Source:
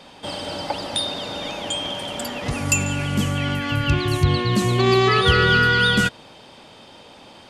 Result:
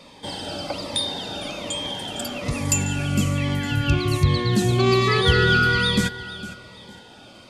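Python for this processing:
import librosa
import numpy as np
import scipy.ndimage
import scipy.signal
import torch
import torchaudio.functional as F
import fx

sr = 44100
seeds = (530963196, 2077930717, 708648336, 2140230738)

y = fx.notch(x, sr, hz=2900.0, q=19.0)
y = fx.echo_feedback(y, sr, ms=457, feedback_pct=32, wet_db=-15.5)
y = fx.notch_cascade(y, sr, direction='falling', hz=1.2)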